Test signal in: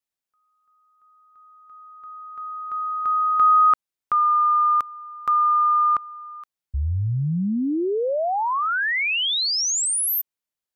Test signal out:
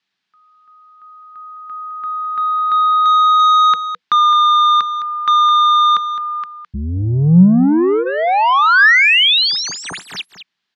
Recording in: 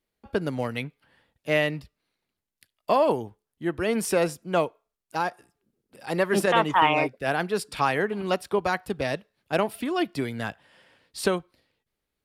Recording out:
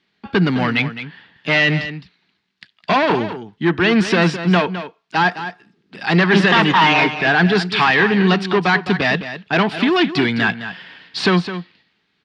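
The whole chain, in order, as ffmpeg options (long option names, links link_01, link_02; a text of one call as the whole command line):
ffmpeg -i in.wav -filter_complex "[0:a]highshelf=frequency=2500:gain=11.5,bandreject=frequency=490:width=15,asplit=2[link_01][link_02];[link_02]acontrast=82,volume=-1dB[link_03];[link_01][link_03]amix=inputs=2:normalize=0,asoftclip=type=tanh:threshold=-14.5dB,highpass=130,equalizer=frequency=180:width_type=q:width=4:gain=9,equalizer=frequency=560:width_type=q:width=4:gain=-10,equalizer=frequency=1700:width_type=q:width=4:gain=4,lowpass=frequency=4100:width=0.5412,lowpass=frequency=4100:width=1.3066,aecho=1:1:211:0.266,volume=4.5dB" out.wav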